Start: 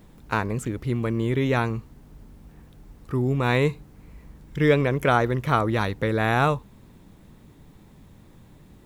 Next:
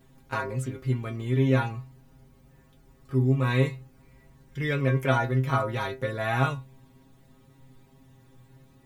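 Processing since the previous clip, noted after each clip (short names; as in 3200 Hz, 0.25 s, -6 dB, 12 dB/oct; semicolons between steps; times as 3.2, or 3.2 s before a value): metallic resonator 130 Hz, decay 0.26 s, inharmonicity 0.002; gain +5.5 dB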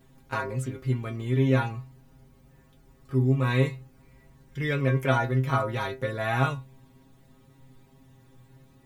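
nothing audible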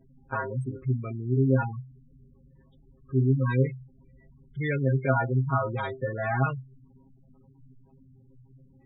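spectral gate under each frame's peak -15 dB strong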